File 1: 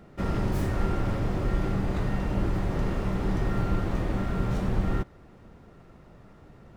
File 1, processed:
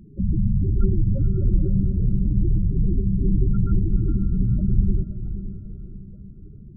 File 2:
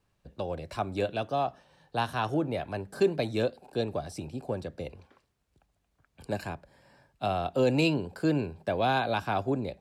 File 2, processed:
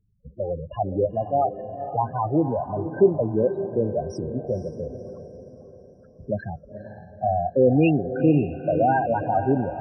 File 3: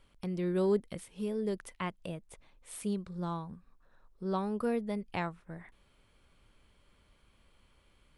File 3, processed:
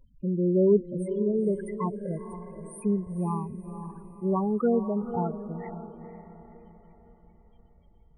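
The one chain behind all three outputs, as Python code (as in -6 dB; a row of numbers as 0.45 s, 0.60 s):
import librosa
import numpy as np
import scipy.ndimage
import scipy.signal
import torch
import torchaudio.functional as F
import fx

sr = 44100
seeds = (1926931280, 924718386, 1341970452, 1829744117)

y = fx.spec_topn(x, sr, count=8)
y = fx.echo_diffused(y, sr, ms=496, feedback_pct=44, wet_db=-10.0)
y = y * librosa.db_to_amplitude(8.0)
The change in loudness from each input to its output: +6.0 LU, +7.0 LU, +7.5 LU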